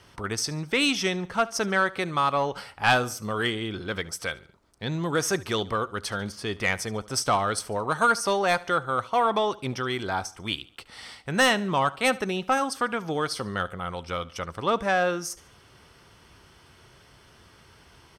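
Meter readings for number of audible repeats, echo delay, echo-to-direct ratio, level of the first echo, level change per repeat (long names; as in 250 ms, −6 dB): 2, 72 ms, −19.5 dB, −20.5 dB, −7.5 dB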